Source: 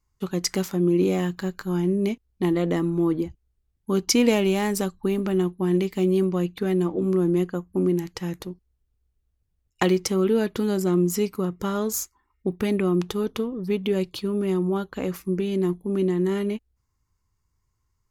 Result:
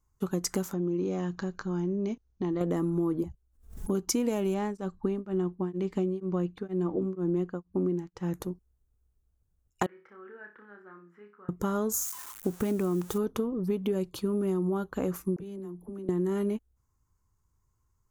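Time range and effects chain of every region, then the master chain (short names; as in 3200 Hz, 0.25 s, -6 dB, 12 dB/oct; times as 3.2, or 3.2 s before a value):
0.73–2.61 steep low-pass 6600 Hz 96 dB/oct + high shelf 4700 Hz +6 dB + compressor 2:1, threshold -31 dBFS
3.23–3.95 envelope flanger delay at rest 5 ms, full sweep at -25.5 dBFS + backwards sustainer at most 120 dB/s
4.54–8.34 LPF 4800 Hz + beating tremolo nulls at 2.1 Hz
9.86–11.49 band-pass 1700 Hz, Q 6.7 + air absorption 490 m + flutter echo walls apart 5 m, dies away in 0.31 s
12.01–13.18 switching spikes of -24.5 dBFS + high shelf 5400 Hz -5 dB
15.36–16.09 compressor 8:1, threshold -37 dBFS + dispersion lows, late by 46 ms, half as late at 380 Hz
whole clip: band shelf 3100 Hz -8.5 dB; compressor, threshold -25 dBFS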